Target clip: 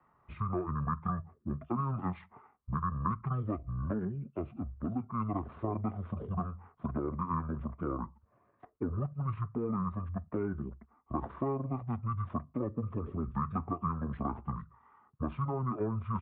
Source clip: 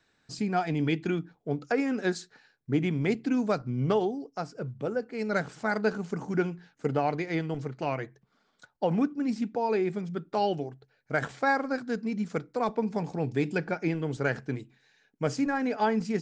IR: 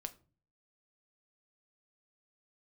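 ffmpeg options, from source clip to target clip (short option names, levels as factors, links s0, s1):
-filter_complex "[0:a]highpass=f=80:p=1,equalizer=f=1600:t=o:w=0.38:g=-11,acrossover=split=200|730[s0][s1][s2];[s0]acompressor=threshold=0.00631:ratio=4[s3];[s1]acompressor=threshold=0.0158:ratio=4[s4];[s2]acompressor=threshold=0.00891:ratio=4[s5];[s3][s4][s5]amix=inputs=3:normalize=0,asplit=2[s6][s7];[s7]asoftclip=type=tanh:threshold=0.0168,volume=0.422[s8];[s6][s8]amix=inputs=2:normalize=0,lowpass=f=2300:t=q:w=3.7,asetrate=22050,aresample=44100,atempo=2,volume=0.841"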